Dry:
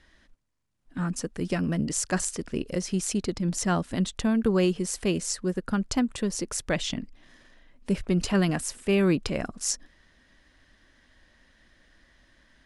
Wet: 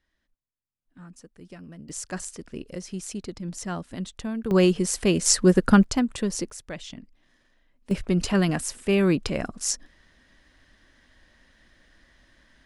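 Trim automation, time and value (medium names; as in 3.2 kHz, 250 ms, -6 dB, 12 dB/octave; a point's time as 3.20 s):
-16.5 dB
from 1.89 s -6.5 dB
from 4.51 s +4.5 dB
from 5.26 s +11 dB
from 5.84 s +1.5 dB
from 6.50 s -9.5 dB
from 7.91 s +1.5 dB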